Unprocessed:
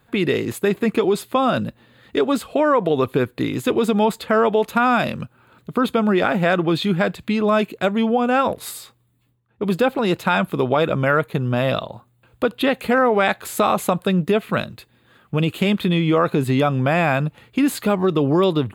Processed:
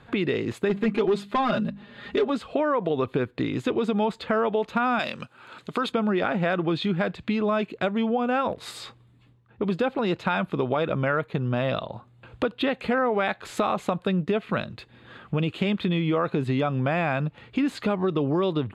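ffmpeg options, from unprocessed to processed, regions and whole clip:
-filter_complex "[0:a]asettb=1/sr,asplit=3[a][b][c];[a]atrim=end=0.694[d];[b]atrim=start=0.69:end=2.3,asetpts=PTS-STARTPTS,afade=t=in:d=0.004:c=qsin,afade=t=out:st=1.606:d=0.004:c=qsin,volume=14dB,asoftclip=hard,volume=-14dB,bandreject=f=50:t=h:w=6,bandreject=f=100:t=h:w=6,bandreject=f=150:t=h:w=6,bandreject=f=200:t=h:w=6,bandreject=f=250:t=h:w=6,aecho=1:1:4.9:0.9,atrim=end_sample=71001[e];[c]atrim=start=2.296[f];[d][e]acrossfade=d=0.004:c1=hsin:c2=qsin[g];[g][f]acrossfade=d=0.004:c1=qsin:c2=hsin,asettb=1/sr,asplit=3[h][i][j];[h]atrim=end=4.994[k];[i]atrim=start=4.99:end=5.92,asetpts=PTS-STARTPTS,afade=t=in:d=0.004:c=qsin,afade=t=out:st=0.926:d=0.004:c=qsin,lowpass=8.8k,aemphasis=mode=production:type=riaa[l];[j]atrim=start=5.916[m];[k][l]acrossfade=d=0.004:c1=hsin:c2=qsin[n];[n][m]acrossfade=d=0.004:c1=qsin:c2=hsin,lowpass=4.5k,acompressor=threshold=-41dB:ratio=2,volume=7.5dB"

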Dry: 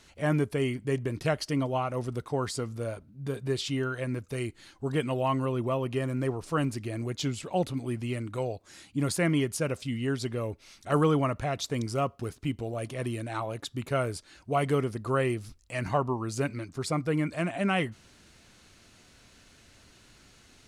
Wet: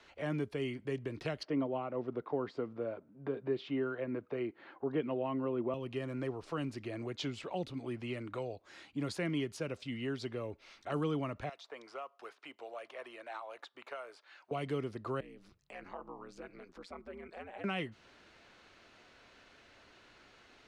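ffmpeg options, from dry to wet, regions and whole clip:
-filter_complex "[0:a]asettb=1/sr,asplit=3[a][b][c];[a]atrim=end=1.434[d];[b]atrim=start=1.43:end=5.74,asetpts=PTS-STARTPTS,afade=t=in:d=0.004:c=qsin,afade=t=out:st=4.306:d=0.004:c=qsin,highpass=160,lowpass=2.1k,equalizer=f=560:w=0.37:g=7[e];[c]atrim=start=5.736[f];[d][e]acrossfade=d=0.004:c1=hsin:c2=qsin[g];[g][f]acrossfade=d=0.004:c1=qsin:c2=hsin,asettb=1/sr,asplit=3[h][i][j];[h]atrim=end=11.494[k];[i]atrim=start=11.49:end=14.51,asetpts=PTS-STARTPTS,afade=t=in:d=0.004:c=qsin,afade=t=out:st=3.016:d=0.004:c=qsin,highpass=820,acrossover=split=1200|4100[l][m][n];[l]acompressor=threshold=-42dB:ratio=4[o];[m]acompressor=threshold=-52dB:ratio=4[p];[n]acompressor=threshold=-55dB:ratio=4[q];[o][p][q]amix=inputs=3:normalize=0[r];[j]atrim=start=14.506[s];[k][r]acrossfade=d=0.004:c1=hsin:c2=qsin[t];[t][s]acrossfade=d=0.004:c1=qsin:c2=hsin,asettb=1/sr,asplit=3[u][v][w];[u]atrim=end=15.204[x];[v]atrim=start=15.2:end=17.64,asetpts=PTS-STARTPTS,afade=t=in:d=0.004:c=qsin,afade=t=out:st=2.436:d=0.004:c=qsin,acompressor=threshold=-45dB:ratio=2.5:attack=3.2:release=140:knee=1:detection=peak,aeval=exprs='val(0)*sin(2*PI*92*n/s)':c=same[y];[w]atrim=start=17.636[z];[x][y]acrossfade=d=0.004:c1=hsin:c2=qsin[aa];[aa][z]acrossfade=d=0.004:c1=qsin:c2=hsin,equalizer=f=6.8k:t=o:w=2:g=-9.5,acrossover=split=300|3000[ab][ac][ad];[ac]acompressor=threshold=-41dB:ratio=6[ae];[ab][ae][ad]amix=inputs=3:normalize=0,acrossover=split=340 6300:gain=0.2 1 0.1[af][ag][ah];[af][ag][ah]amix=inputs=3:normalize=0,volume=2dB"

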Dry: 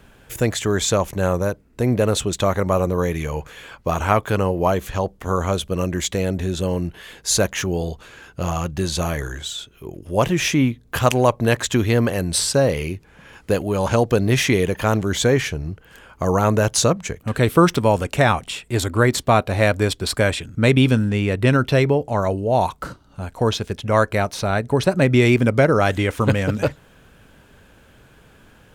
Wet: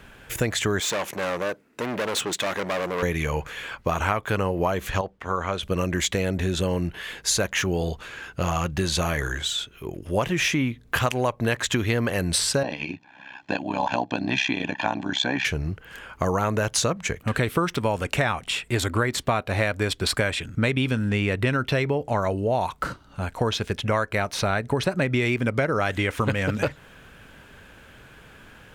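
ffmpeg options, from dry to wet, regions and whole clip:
-filter_complex "[0:a]asettb=1/sr,asplit=3[a][b][c];[a]atrim=end=0.804[d];[b]atrim=start=0.8:end=3.03,asetpts=PTS-STARTPTS,afade=t=in:d=0.004:c=qsin,afade=t=out:st=2.226:d=0.004:c=qsin,volume=23.5dB,asoftclip=hard,volume=-23.5dB,highpass=240[e];[c]atrim=start=3.026[f];[d][e]acrossfade=d=0.004:c1=hsin:c2=qsin[g];[g][f]acrossfade=d=0.004:c1=qsin:c2=hsin,asettb=1/sr,asplit=3[h][i][j];[h]atrim=end=5.014[k];[i]atrim=start=5.01:end=5.63,asetpts=PTS-STARTPTS,afade=t=in:d=0.004:c=qsin,afade=t=out:st=0.616:d=0.004:c=qsin,highpass=f=1.3k:p=1,aemphasis=mode=reproduction:type=riaa[l];[j]atrim=start=5.626[m];[k][l]acrossfade=d=0.004:c1=hsin:c2=qsin[n];[n][m]acrossfade=d=0.004:c1=qsin:c2=hsin,asettb=1/sr,asplit=3[o][p][q];[o]atrim=end=12.634[r];[p]atrim=start=12.63:end=15.45,asetpts=PTS-STARTPTS,afade=t=in:d=0.004:c=qsin,afade=t=out:st=2.816:d=0.004:c=qsin,aecho=1:1:1.2:0.78,atrim=end_sample=124362,tremolo=f=65:d=0.857,highpass=270,equalizer=f=290:t=q:w=4:g=8,equalizer=f=500:t=q:w=4:g=-5,equalizer=f=850:t=q:w=4:g=4,equalizer=f=1.3k:t=q:w=4:g=-5,equalizer=f=1.9k:t=q:w=4:g=-5,equalizer=f=5.1k:t=q:w=4:g=-3,lowpass=f=5.3k:w=0.5412,lowpass=f=5.3k:w=1.3066[s];[q]atrim=start=15.446[t];[r][s]acrossfade=d=0.004:c1=hsin:c2=qsin[u];[u][t]acrossfade=d=0.004:c1=qsin:c2=hsin,equalizer=f=2k:w=0.69:g=6,acompressor=threshold=-20dB:ratio=6"

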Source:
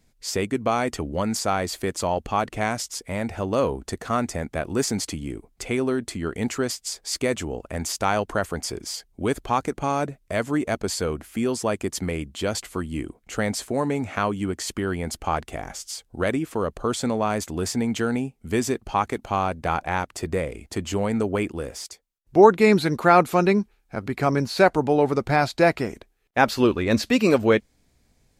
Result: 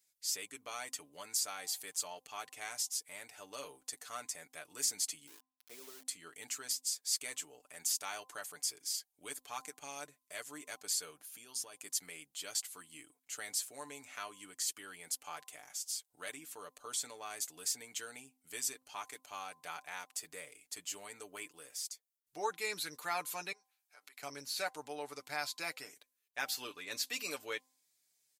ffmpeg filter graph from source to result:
-filter_complex "[0:a]asettb=1/sr,asplit=3[a][b][c];[a]atrim=end=5.274[d];[b]atrim=start=5.27:end=6.05,asetpts=PTS-STARTPTS,afade=t=in:d=0.004:c=qsin,afade=t=out:st=0.776:d=0.004:c=qsin,bandpass=f=430:t=q:w=0.98,aeval=exprs='val(0)*gte(abs(val(0)),0.0168)':c=same[e];[c]atrim=start=6.046[f];[d][e]acrossfade=d=0.004:c1=hsin:c2=qsin[g];[g][f]acrossfade=d=0.004:c1=qsin:c2=hsin,asettb=1/sr,asplit=3[h][i][j];[h]atrim=end=11.104[k];[i]atrim=start=11.1:end=11.79,asetpts=PTS-STARTPTS,afade=t=in:d=0.004:c=qsin,afade=t=out:st=0.686:d=0.004:c=qsin,equalizer=f=2k:t=o:w=0.24:g=-8.5,bandreject=f=7.8k:w=8.6,acompressor=threshold=-25dB:ratio=6:attack=3.2:release=140:knee=1:detection=peak[l];[j]atrim=start=11.786[m];[k][l]acrossfade=d=0.004:c1=hsin:c2=qsin[n];[n][m]acrossfade=d=0.004:c1=qsin:c2=hsin,asettb=1/sr,asplit=3[o][p][q];[o]atrim=end=23.524[r];[p]atrim=start=23.52:end=24.23,asetpts=PTS-STARTPTS,afade=t=in:d=0.004:c=qsin,afade=t=out:st=0.706:d=0.004:c=qsin,acompressor=threshold=-32dB:ratio=3:attack=3.2:release=140:knee=1:detection=peak,highpass=630[s];[q]atrim=start=24.226[t];[r][s]acrossfade=d=0.004:c1=hsin:c2=qsin[u];[u][t]acrossfade=d=0.004:c1=qsin:c2=hsin,aderivative,aecho=1:1:6.8:0.64,bandreject=f=258.2:t=h:w=4,bandreject=f=516.4:t=h:w=4,bandreject=f=774.6:t=h:w=4,bandreject=f=1.0328k:t=h:w=4,volume=-5dB"

